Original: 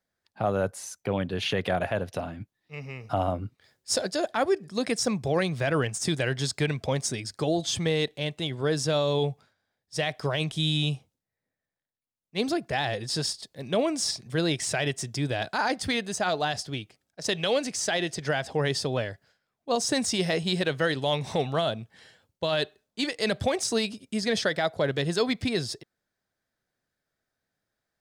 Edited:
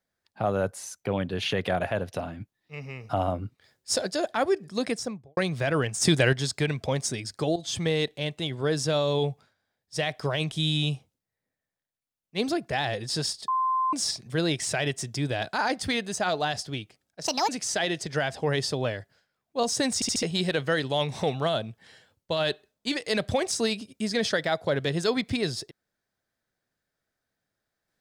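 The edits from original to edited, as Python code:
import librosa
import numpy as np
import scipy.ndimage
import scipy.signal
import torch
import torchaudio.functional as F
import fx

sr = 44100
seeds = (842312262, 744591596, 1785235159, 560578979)

y = fx.studio_fade_out(x, sr, start_s=4.8, length_s=0.57)
y = fx.edit(y, sr, fx.clip_gain(start_s=5.98, length_s=0.35, db=6.0),
    fx.fade_in_from(start_s=7.56, length_s=0.34, curve='qsin', floor_db=-12.5),
    fx.bleep(start_s=13.48, length_s=0.45, hz=1040.0, db=-22.0),
    fx.speed_span(start_s=17.27, length_s=0.34, speed=1.56),
    fx.stutter_over(start_s=20.07, slice_s=0.07, count=4), tone=tone)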